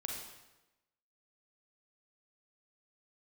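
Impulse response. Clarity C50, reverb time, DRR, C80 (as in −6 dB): 1.5 dB, 1.0 s, −0.5 dB, 4.5 dB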